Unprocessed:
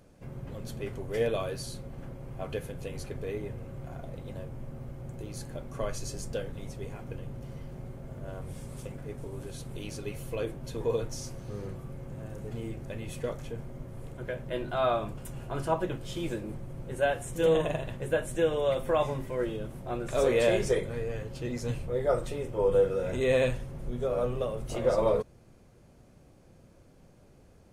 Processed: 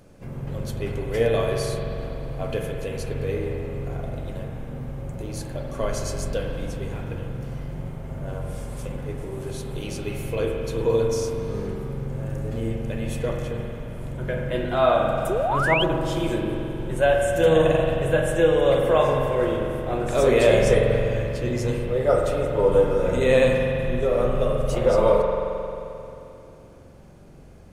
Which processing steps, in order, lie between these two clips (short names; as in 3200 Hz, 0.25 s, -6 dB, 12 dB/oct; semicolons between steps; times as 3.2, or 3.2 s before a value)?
spring tank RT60 2.9 s, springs 44 ms, chirp 65 ms, DRR 1 dB; painted sound rise, 15.29–15.84, 340–3400 Hz -30 dBFS; gain +6 dB